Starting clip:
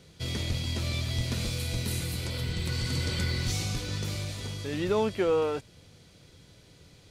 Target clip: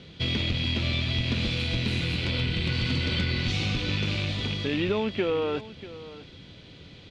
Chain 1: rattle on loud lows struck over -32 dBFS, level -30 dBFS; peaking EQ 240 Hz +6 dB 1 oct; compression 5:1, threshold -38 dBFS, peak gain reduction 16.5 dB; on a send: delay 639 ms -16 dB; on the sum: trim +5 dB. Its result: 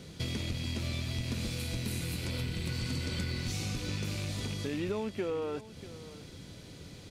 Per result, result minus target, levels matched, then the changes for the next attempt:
compression: peak gain reduction +7.5 dB; 4 kHz band -3.0 dB
change: compression 5:1, threshold -28.5 dBFS, peak gain reduction 9 dB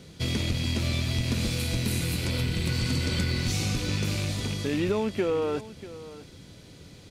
4 kHz band -3.0 dB
add after rattle on loud lows: resonant low-pass 3.3 kHz, resonance Q 2.2

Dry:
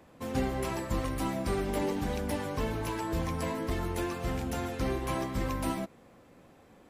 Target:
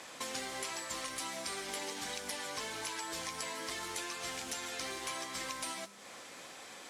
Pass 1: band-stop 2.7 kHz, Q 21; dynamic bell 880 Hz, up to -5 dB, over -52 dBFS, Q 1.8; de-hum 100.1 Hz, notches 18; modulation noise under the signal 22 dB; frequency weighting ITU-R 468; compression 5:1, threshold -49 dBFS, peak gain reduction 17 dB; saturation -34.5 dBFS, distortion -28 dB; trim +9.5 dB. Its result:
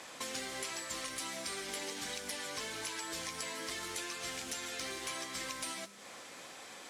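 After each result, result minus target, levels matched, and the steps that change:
saturation: distortion +14 dB; 1 kHz band -2.5 dB
change: saturation -27 dBFS, distortion -40 dB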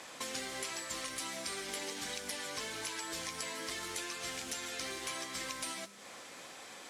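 1 kHz band -2.5 dB
remove: dynamic bell 880 Hz, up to -5 dB, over -52 dBFS, Q 1.8

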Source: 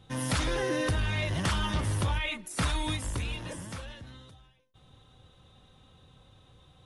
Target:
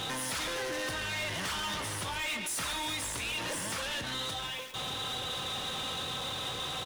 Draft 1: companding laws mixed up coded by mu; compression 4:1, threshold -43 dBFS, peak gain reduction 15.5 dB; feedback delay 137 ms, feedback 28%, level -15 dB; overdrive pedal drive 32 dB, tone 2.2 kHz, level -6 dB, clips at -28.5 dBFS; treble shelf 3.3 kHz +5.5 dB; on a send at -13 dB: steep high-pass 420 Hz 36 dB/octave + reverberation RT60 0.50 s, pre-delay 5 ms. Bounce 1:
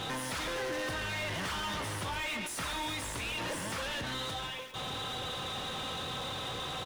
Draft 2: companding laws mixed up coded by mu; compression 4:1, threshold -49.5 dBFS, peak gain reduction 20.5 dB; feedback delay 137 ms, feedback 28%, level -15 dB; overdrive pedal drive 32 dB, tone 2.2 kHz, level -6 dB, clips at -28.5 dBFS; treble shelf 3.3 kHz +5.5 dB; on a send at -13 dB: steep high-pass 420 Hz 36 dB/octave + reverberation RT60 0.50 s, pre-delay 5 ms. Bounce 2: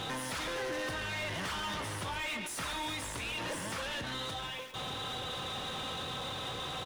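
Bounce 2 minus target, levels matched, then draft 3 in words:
8 kHz band -3.5 dB
companding laws mixed up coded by mu; compression 4:1, threshold -49.5 dBFS, peak gain reduction 20.5 dB; feedback delay 137 ms, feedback 28%, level -15 dB; overdrive pedal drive 32 dB, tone 2.2 kHz, level -6 dB, clips at -28.5 dBFS; treble shelf 3.3 kHz +13 dB; on a send at -13 dB: steep high-pass 420 Hz 36 dB/octave + reverberation RT60 0.50 s, pre-delay 5 ms

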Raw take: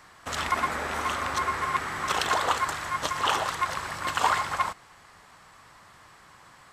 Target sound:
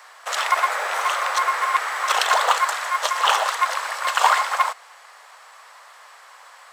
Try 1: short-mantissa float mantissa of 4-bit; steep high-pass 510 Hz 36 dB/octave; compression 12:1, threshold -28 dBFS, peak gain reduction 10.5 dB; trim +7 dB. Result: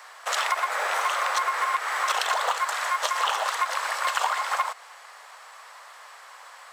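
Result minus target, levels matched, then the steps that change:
compression: peak gain reduction +10.5 dB
remove: compression 12:1, threshold -28 dBFS, peak gain reduction 10.5 dB

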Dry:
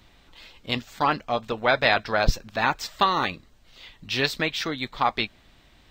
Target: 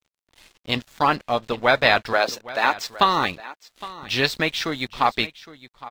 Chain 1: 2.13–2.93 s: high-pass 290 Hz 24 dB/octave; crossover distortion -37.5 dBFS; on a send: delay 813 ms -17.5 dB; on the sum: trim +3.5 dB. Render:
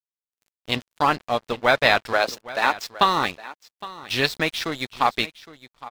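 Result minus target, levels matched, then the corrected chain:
crossover distortion: distortion +7 dB
2.13–2.93 s: high-pass 290 Hz 24 dB/octave; crossover distortion -46.5 dBFS; on a send: delay 813 ms -17.5 dB; on the sum: trim +3.5 dB

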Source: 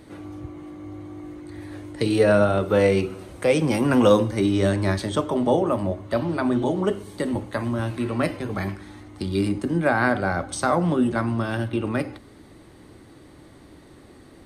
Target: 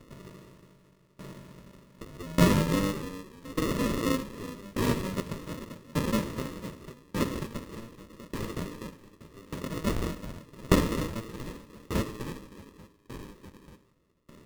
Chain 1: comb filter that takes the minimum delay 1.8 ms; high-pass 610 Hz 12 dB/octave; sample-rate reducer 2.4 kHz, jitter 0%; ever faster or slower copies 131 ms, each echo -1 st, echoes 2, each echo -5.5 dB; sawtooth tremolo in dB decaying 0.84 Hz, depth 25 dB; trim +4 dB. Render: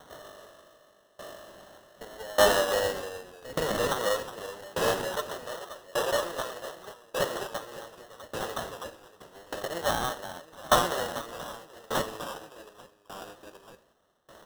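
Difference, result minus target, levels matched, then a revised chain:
sample-rate reducer: distortion -12 dB
comb filter that takes the minimum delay 1.8 ms; high-pass 610 Hz 12 dB/octave; sample-rate reducer 790 Hz, jitter 0%; ever faster or slower copies 131 ms, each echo -1 st, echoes 2, each echo -5.5 dB; sawtooth tremolo in dB decaying 0.84 Hz, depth 25 dB; trim +4 dB

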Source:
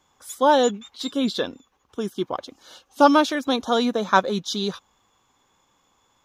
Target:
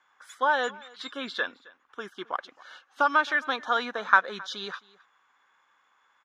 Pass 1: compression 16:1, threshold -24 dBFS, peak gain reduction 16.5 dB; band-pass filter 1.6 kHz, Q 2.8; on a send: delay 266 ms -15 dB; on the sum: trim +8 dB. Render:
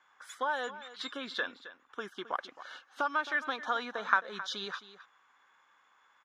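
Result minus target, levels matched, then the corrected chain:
compression: peak gain reduction +9 dB; echo-to-direct +8 dB
compression 16:1, threshold -14.5 dBFS, peak gain reduction 7.5 dB; band-pass filter 1.6 kHz, Q 2.8; on a send: delay 266 ms -23 dB; on the sum: trim +8 dB

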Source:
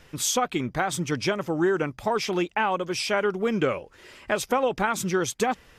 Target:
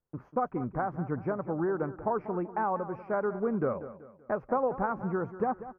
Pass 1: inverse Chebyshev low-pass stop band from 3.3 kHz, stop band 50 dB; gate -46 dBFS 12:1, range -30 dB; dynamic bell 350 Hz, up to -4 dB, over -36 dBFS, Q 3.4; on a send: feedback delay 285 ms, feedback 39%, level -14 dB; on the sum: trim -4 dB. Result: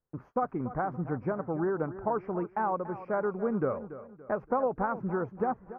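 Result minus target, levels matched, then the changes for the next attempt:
echo 94 ms late
change: feedback delay 191 ms, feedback 39%, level -14 dB

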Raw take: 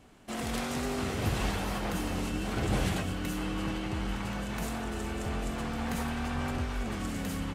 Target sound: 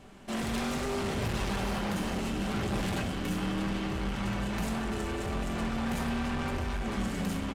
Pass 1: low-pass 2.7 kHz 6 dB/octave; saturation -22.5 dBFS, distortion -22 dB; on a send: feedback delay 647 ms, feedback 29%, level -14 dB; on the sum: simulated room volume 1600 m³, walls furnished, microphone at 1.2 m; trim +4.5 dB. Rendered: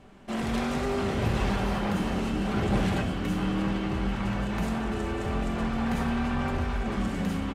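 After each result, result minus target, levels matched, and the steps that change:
saturation: distortion -12 dB; 8 kHz band -7.0 dB
change: saturation -34 dBFS, distortion -9 dB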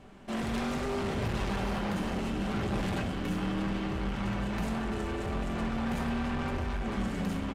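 8 kHz band -6.0 dB
change: low-pass 7.9 kHz 6 dB/octave

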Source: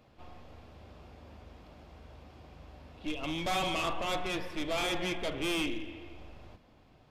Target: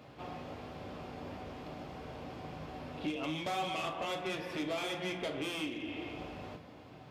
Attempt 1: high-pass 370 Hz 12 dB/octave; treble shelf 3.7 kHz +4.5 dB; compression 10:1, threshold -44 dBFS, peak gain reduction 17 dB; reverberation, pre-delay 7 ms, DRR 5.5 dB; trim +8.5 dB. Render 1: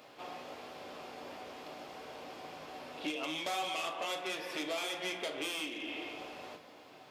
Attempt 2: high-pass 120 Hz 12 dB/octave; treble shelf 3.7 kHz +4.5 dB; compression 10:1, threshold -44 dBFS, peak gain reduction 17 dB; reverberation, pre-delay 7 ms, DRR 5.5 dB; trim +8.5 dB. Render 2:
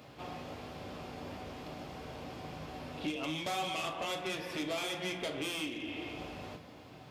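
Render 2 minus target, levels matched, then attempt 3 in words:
8 kHz band +5.0 dB
high-pass 120 Hz 12 dB/octave; treble shelf 3.7 kHz -3.5 dB; compression 10:1, threshold -44 dBFS, peak gain reduction 16 dB; reverberation, pre-delay 7 ms, DRR 5.5 dB; trim +8.5 dB

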